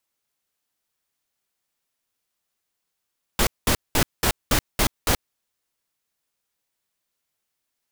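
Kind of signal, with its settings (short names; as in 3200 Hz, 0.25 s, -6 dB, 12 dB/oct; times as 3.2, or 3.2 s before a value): noise bursts pink, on 0.08 s, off 0.20 s, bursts 7, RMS -19 dBFS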